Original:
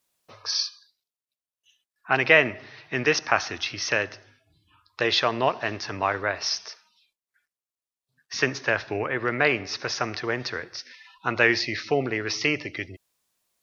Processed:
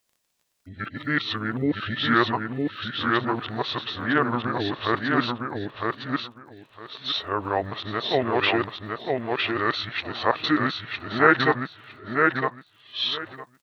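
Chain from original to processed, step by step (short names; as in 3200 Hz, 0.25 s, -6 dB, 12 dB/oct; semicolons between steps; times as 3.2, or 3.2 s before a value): whole clip reversed; crackle 26/s -50 dBFS; on a send: feedback echo 0.958 s, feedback 18%, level -3 dB; on the sum: formant shift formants -6 st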